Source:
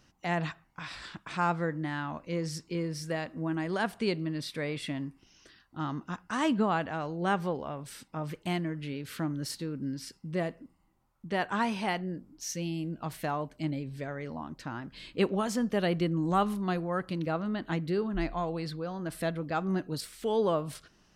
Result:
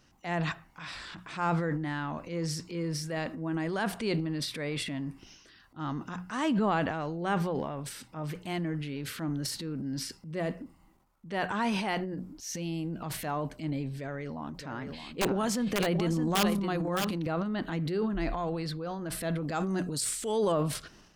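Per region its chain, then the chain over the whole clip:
13.99–17.14 wrapped overs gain 18 dB + echo 0.615 s -9 dB
19.48–20.52 bell 8000 Hz +14.5 dB 0.92 oct + mismatched tape noise reduction decoder only
whole clip: notches 60/120/180 Hz; transient shaper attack -5 dB, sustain +9 dB

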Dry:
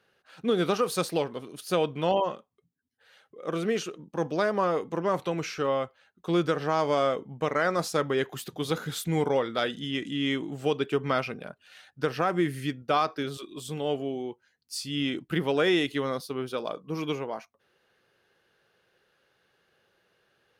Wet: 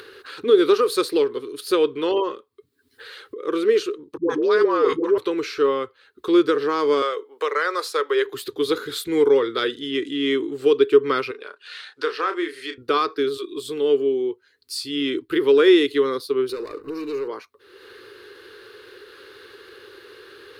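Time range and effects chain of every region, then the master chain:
4.17–5.18 LPF 6900 Hz + dispersion highs, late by 0.124 s, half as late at 420 Hz + sustainer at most 39 dB/s
7.02–8.25 HPF 490 Hz 24 dB/oct + three-band squash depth 40%
11.31–12.78 BPF 610–7500 Hz + doubler 32 ms -8 dB
16.49–17.28 sample leveller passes 3 + compressor, threshold -36 dBFS + Butterworth band-stop 3300 Hz, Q 4.9
whole clip: EQ curve 110 Hz 0 dB, 180 Hz -18 dB, 270 Hz +4 dB, 420 Hz +15 dB, 670 Hz -12 dB, 1100 Hz +6 dB, 2900 Hz +3 dB, 4200 Hz +10 dB, 6000 Hz -2 dB, 8800 Hz +3 dB; upward compressor, threshold -28 dBFS

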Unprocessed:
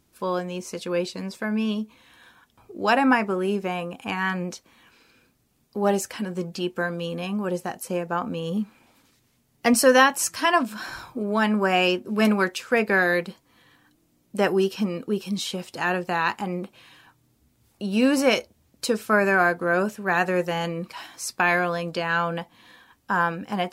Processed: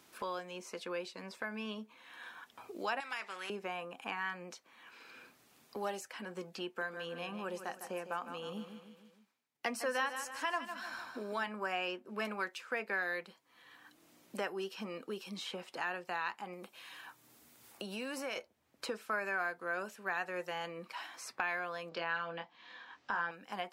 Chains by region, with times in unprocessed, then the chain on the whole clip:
3–3.5 band-pass 3000 Hz, Q 0.94 + spectral compressor 2:1
6.66–11.48 expander -51 dBFS + feedback echo 0.153 s, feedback 36%, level -10.5 dB
16.53–18.36 compressor 2.5:1, threshold -28 dBFS + high shelf 5700 Hz +11.5 dB
21.89–23.31 LPF 5700 Hz 24 dB/oct + doubler 24 ms -4.5 dB
whole clip: HPF 1300 Hz 6 dB/oct; high shelf 3400 Hz -10 dB; three-band squash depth 70%; gain -8 dB

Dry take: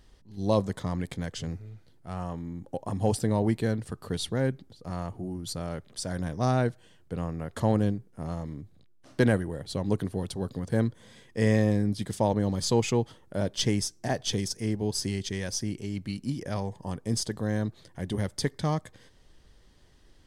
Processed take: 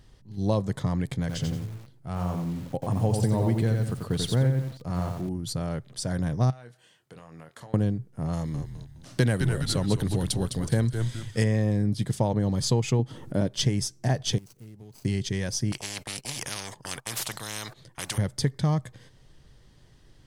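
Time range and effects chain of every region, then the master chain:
1.2–5.29 notch 1800 Hz, Q 22 + lo-fi delay 89 ms, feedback 35%, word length 8-bit, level -4 dB
6.5–7.74 HPF 960 Hz 6 dB/oct + compressor, threshold -45 dBFS + doubler 25 ms -9.5 dB
8.33–11.44 high shelf 2300 Hz +11 dB + frequency-shifting echo 0.208 s, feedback 38%, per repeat -110 Hz, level -8 dB
12.99–13.47 bell 270 Hz +8 dB 0.94 oct + upward compressor, threshold -32 dBFS
14.38–15.05 median filter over 25 samples + pre-emphasis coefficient 0.8 + compressor 3:1, threshold -48 dBFS
15.72–18.18 de-esser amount 40% + gate -42 dBFS, range -22 dB + spectral compressor 10:1
whole clip: bell 130 Hz +11 dB 0.58 oct; compressor 5:1, threshold -21 dBFS; gain +1.5 dB

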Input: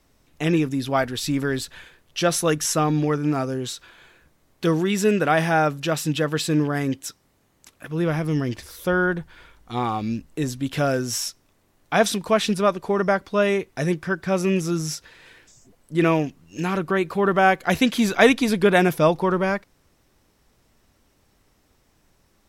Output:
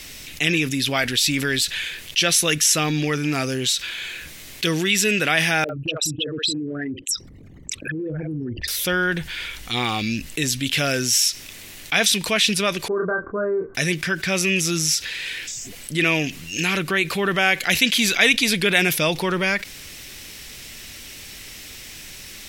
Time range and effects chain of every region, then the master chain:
5.64–8.68 formant sharpening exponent 3 + bands offset in time lows, highs 50 ms, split 570 Hz + compressor 3:1, threshold -32 dBFS
12.88–13.75 rippled Chebyshev low-pass 1600 Hz, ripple 9 dB + doubler 28 ms -5 dB
whole clip: resonant high shelf 1600 Hz +13 dB, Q 1.5; fast leveller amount 50%; gain -9 dB

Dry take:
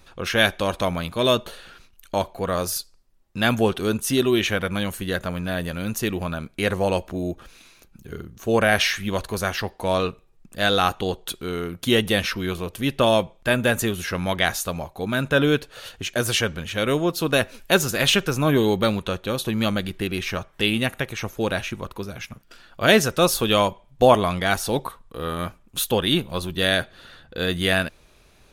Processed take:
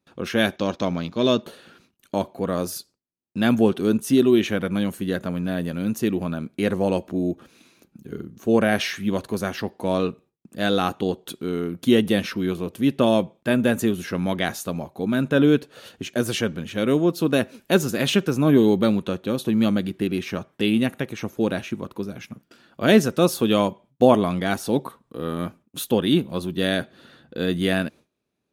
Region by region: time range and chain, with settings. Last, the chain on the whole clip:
0.56–1.43 G.711 law mismatch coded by A + resonant high shelf 7500 Hz -10 dB, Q 3
whole clip: gate with hold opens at -41 dBFS; HPF 97 Hz; bell 250 Hz +12 dB 1.9 oct; gain -6 dB

